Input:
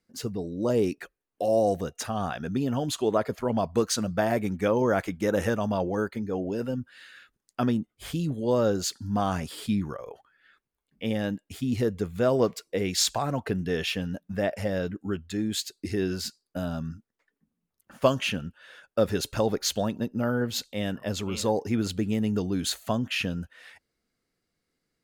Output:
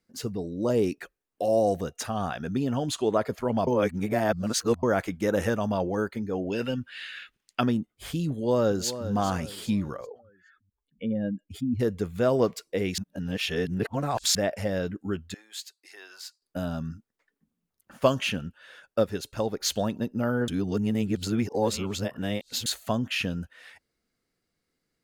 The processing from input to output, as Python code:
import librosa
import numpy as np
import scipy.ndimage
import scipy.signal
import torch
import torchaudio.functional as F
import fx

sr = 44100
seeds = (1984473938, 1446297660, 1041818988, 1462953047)

y = fx.peak_eq(x, sr, hz=13000.0, db=-9.0, octaves=0.21, at=(2.6, 3.17))
y = fx.peak_eq(y, sr, hz=2700.0, db=13.5, octaves=1.6, at=(6.5, 7.61))
y = fx.echo_throw(y, sr, start_s=8.3, length_s=0.79, ms=400, feedback_pct=40, wet_db=-12.0)
y = fx.spec_expand(y, sr, power=1.9, at=(10.05, 11.79), fade=0.02)
y = fx.ladder_highpass(y, sr, hz=720.0, resonance_pct=35, at=(15.34, 16.42))
y = fx.upward_expand(y, sr, threshold_db=-33.0, expansion=1.5, at=(19.01, 19.59), fade=0.02)
y = fx.edit(y, sr, fx.reverse_span(start_s=3.67, length_s=1.16),
    fx.reverse_span(start_s=12.98, length_s=1.37),
    fx.reverse_span(start_s=20.48, length_s=2.18), tone=tone)